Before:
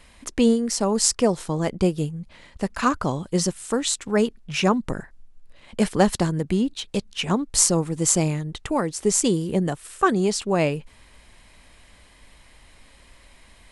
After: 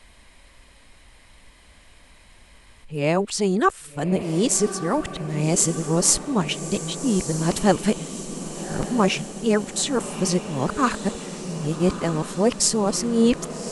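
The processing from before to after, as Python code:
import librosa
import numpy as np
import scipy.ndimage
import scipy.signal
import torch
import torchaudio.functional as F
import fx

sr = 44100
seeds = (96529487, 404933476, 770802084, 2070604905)

y = x[::-1].copy()
y = fx.echo_diffused(y, sr, ms=1210, feedback_pct=61, wet_db=-11)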